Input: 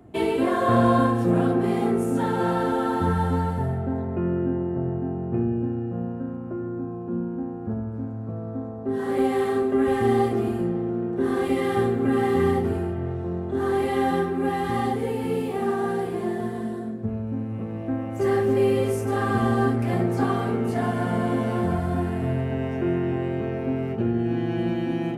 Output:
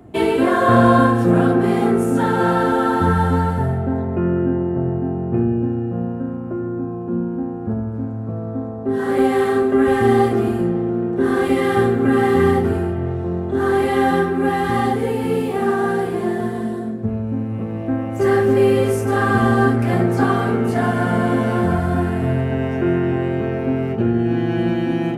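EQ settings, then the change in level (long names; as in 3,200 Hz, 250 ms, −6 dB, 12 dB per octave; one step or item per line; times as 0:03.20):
dynamic equaliser 1,500 Hz, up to +5 dB, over −46 dBFS, Q 3.4
+6.0 dB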